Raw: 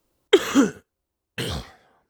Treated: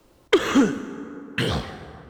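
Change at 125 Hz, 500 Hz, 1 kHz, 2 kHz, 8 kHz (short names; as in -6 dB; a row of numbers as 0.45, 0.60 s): +4.5, -1.5, +2.5, +2.5, -3.5 dB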